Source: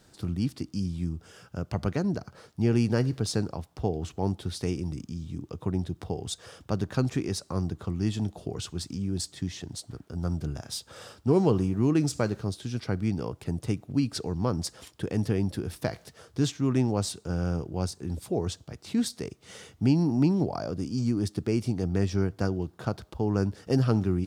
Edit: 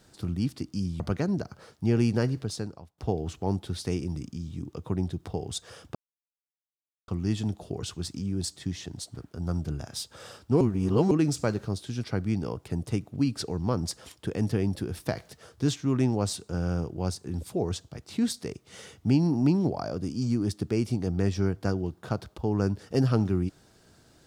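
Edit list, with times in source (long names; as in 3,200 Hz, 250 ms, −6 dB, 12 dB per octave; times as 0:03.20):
0:01.00–0:01.76: remove
0:02.91–0:03.74: fade out, to −21 dB
0:06.71–0:07.84: silence
0:11.37–0:11.87: reverse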